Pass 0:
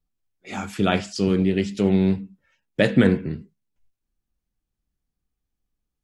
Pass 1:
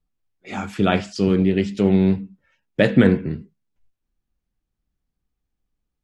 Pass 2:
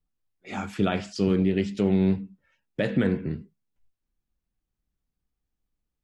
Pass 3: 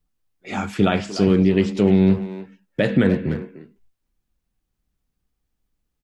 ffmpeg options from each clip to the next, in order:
-af "highshelf=f=5500:g=-9.5,volume=1.33"
-af "alimiter=limit=0.355:level=0:latency=1:release=113,volume=0.631"
-filter_complex "[0:a]asplit=2[s0][s1];[s1]adelay=300,highpass=300,lowpass=3400,asoftclip=type=hard:threshold=0.0794,volume=0.282[s2];[s0][s2]amix=inputs=2:normalize=0,volume=2.11"

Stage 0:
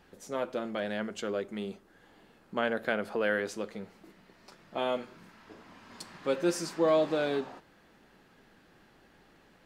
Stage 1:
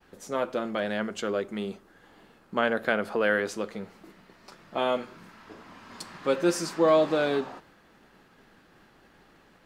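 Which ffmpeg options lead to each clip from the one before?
-af "agate=range=0.0224:threshold=0.00126:ratio=3:detection=peak,equalizer=f=1200:w=2.4:g=3,volume=1.58"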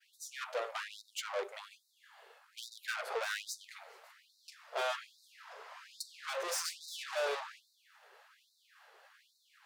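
-af "aeval=exprs='(tanh(50.1*val(0)+0.75)-tanh(0.75))/50.1':c=same,afftfilt=real='re*gte(b*sr/1024,380*pow(3700/380,0.5+0.5*sin(2*PI*1.2*pts/sr)))':imag='im*gte(b*sr/1024,380*pow(3700/380,0.5+0.5*sin(2*PI*1.2*pts/sr)))':win_size=1024:overlap=0.75,volume=1.5"

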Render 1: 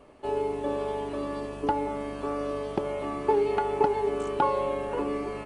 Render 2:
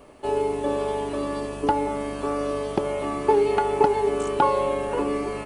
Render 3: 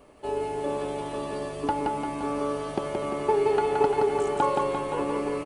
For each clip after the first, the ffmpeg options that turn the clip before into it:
-af "highshelf=f=7200:g=10.5,volume=1.68"
-af "aecho=1:1:173|346|519|692|865|1038|1211|1384:0.708|0.396|0.222|0.124|0.0696|0.039|0.0218|0.0122,volume=0.562"

